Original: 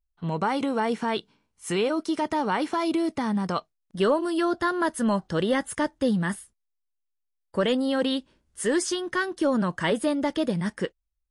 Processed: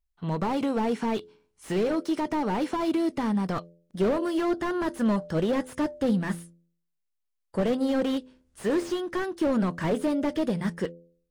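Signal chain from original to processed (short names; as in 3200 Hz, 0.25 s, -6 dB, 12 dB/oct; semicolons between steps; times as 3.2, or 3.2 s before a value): de-hum 85.17 Hz, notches 7; slew limiter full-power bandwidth 40 Hz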